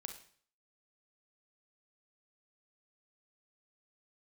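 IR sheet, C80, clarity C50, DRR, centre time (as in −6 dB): 13.0 dB, 8.0 dB, 5.0 dB, 16 ms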